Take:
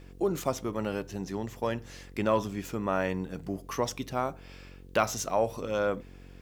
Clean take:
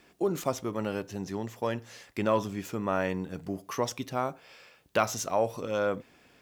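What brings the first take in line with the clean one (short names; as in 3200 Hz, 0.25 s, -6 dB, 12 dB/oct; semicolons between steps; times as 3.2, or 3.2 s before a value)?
de-hum 45.8 Hz, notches 11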